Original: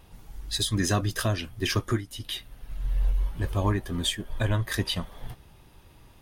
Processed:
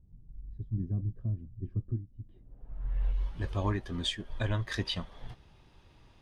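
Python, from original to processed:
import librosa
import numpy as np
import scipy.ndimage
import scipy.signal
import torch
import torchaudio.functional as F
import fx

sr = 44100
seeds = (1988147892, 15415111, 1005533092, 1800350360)

y = fx.filter_sweep_lowpass(x, sr, from_hz=170.0, to_hz=5200.0, start_s=2.22, end_s=3.25, q=0.98)
y = y * librosa.db_to_amplitude(-5.5)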